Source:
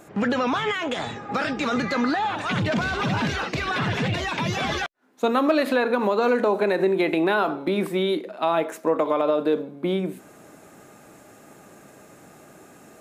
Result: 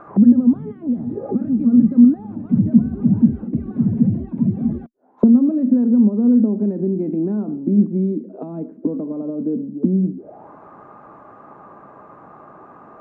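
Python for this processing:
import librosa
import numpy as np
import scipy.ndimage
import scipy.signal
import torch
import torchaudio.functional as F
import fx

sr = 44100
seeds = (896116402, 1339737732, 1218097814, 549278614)

y = fx.envelope_lowpass(x, sr, base_hz=230.0, top_hz=1300.0, q=6.2, full_db=-25.0, direction='down')
y = F.gain(torch.from_numpy(y), 2.0).numpy()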